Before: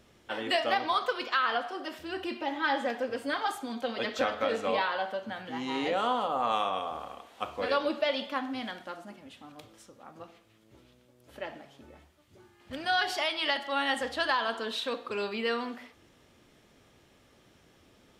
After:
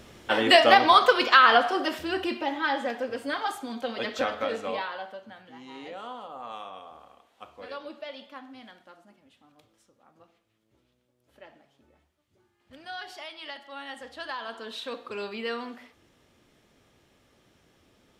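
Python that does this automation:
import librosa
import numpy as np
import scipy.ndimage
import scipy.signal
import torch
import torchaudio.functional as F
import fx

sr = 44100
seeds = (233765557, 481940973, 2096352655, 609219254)

y = fx.gain(x, sr, db=fx.line((1.77, 11.0), (2.72, 1.0), (4.34, 1.0), (5.58, -11.0), (13.94, -11.0), (14.99, -2.0)))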